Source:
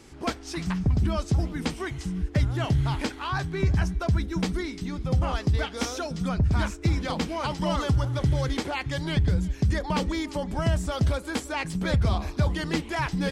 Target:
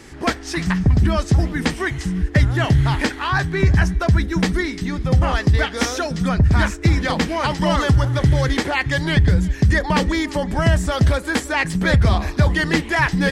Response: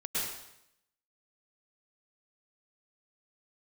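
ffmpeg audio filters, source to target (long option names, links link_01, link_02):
-af "equalizer=frequency=1800:width=4.2:gain=9,volume=8dB"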